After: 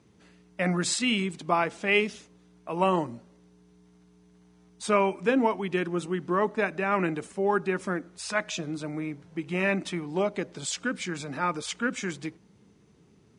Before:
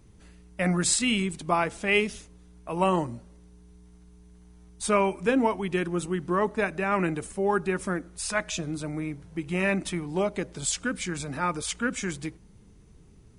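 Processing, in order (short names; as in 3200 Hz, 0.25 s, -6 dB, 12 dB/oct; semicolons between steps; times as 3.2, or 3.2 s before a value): BPF 160–6300 Hz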